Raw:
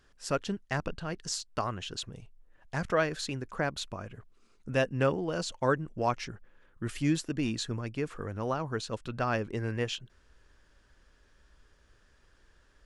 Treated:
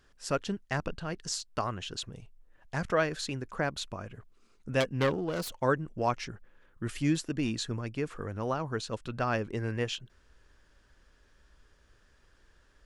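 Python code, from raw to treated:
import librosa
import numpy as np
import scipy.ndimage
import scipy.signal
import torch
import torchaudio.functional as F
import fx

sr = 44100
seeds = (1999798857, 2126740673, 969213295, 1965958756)

y = fx.self_delay(x, sr, depth_ms=0.27, at=(4.8, 5.6))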